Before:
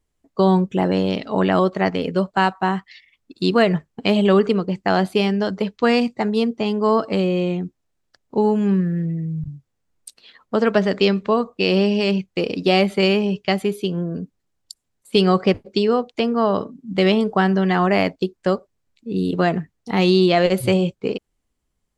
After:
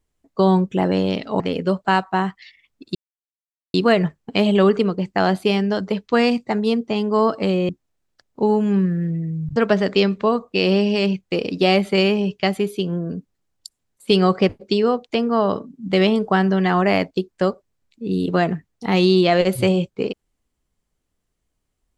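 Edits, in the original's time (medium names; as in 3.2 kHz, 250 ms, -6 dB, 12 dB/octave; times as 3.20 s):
1.40–1.89 s: delete
3.44 s: insert silence 0.79 s
7.39–7.64 s: delete
9.51–10.61 s: delete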